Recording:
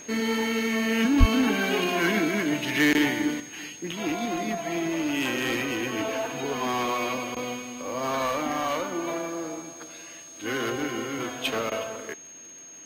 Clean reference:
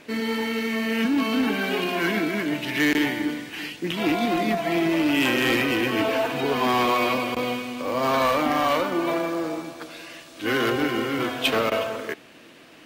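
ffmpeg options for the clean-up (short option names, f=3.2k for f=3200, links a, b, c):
-filter_complex "[0:a]adeclick=t=4,bandreject=f=6.5k:w=30,asplit=3[a][b][c];[a]afade=t=out:st=1.19:d=0.02[d];[b]highpass=f=140:w=0.5412,highpass=f=140:w=1.3066,afade=t=in:st=1.19:d=0.02,afade=t=out:st=1.31:d=0.02[e];[c]afade=t=in:st=1.31:d=0.02[f];[d][e][f]amix=inputs=3:normalize=0,asetnsamples=n=441:p=0,asendcmd='3.4 volume volume 6dB',volume=0dB"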